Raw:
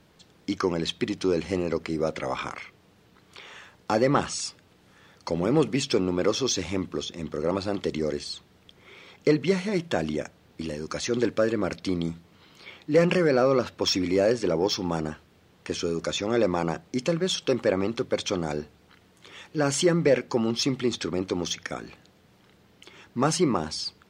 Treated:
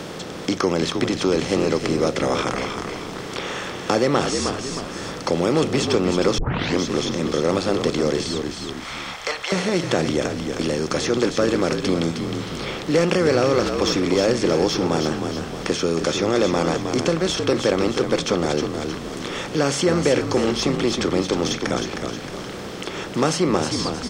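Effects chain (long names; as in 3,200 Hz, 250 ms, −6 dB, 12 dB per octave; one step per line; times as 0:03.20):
compressor on every frequency bin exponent 0.6
0:08.27–0:09.52: high-pass filter 720 Hz 24 dB per octave
echo with shifted repeats 312 ms, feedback 37%, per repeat −59 Hz, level −7.5 dB
surface crackle 43 per second −44 dBFS
0:06.38: tape start 0.41 s
multiband upward and downward compressor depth 40%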